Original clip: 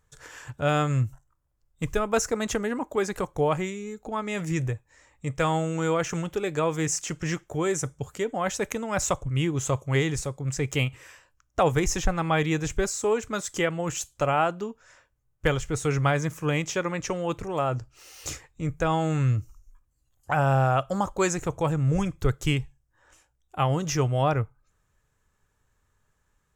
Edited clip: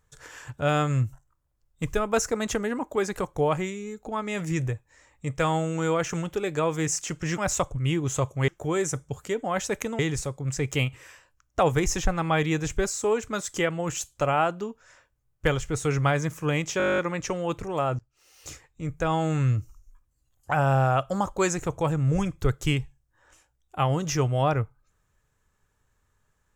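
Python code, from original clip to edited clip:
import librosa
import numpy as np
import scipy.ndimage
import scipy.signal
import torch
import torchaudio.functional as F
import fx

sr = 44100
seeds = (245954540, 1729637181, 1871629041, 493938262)

y = fx.edit(x, sr, fx.move(start_s=8.89, length_s=1.1, to_s=7.38),
    fx.stutter(start_s=16.78, slice_s=0.02, count=11),
    fx.fade_in_from(start_s=17.79, length_s=1.22, floor_db=-22.0), tone=tone)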